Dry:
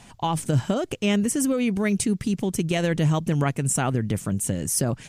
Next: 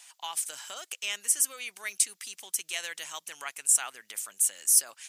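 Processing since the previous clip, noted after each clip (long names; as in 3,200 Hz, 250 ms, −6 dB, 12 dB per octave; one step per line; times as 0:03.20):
high-pass filter 1,000 Hz 12 dB per octave
spectral tilt +4 dB per octave
level −8.5 dB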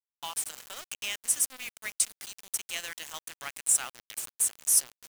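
bit-depth reduction 6 bits, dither none
level −1.5 dB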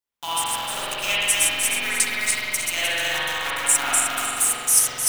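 feedback delay that plays each chunk backwards 154 ms, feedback 56%, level −2 dB
spring reverb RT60 2.6 s, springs 45 ms, chirp 25 ms, DRR −9 dB
level +5 dB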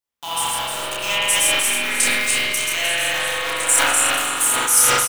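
double-tracking delay 29 ms −3.5 dB
echo through a band-pass that steps 400 ms, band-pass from 460 Hz, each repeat 1.4 octaves, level −0.5 dB
level that may fall only so fast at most 24 dB per second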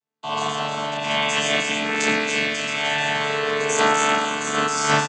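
channel vocoder with a chord as carrier bare fifth, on D3
single-tap delay 84 ms −12.5 dB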